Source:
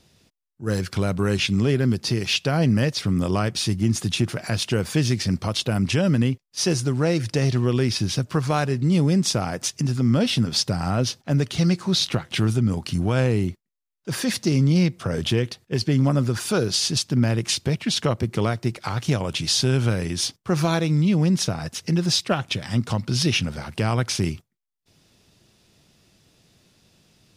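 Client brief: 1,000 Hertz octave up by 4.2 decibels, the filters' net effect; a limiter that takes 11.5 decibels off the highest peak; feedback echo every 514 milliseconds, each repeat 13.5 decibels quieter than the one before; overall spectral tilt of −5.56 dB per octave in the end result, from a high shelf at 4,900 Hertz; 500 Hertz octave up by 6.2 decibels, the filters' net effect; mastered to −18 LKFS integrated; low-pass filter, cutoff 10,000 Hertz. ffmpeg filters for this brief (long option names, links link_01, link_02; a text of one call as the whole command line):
ffmpeg -i in.wav -af "lowpass=10000,equalizer=frequency=500:width_type=o:gain=7,equalizer=frequency=1000:width_type=o:gain=3.5,highshelf=frequency=4900:gain=-8.5,alimiter=limit=-15.5dB:level=0:latency=1,aecho=1:1:514|1028:0.211|0.0444,volume=7.5dB" out.wav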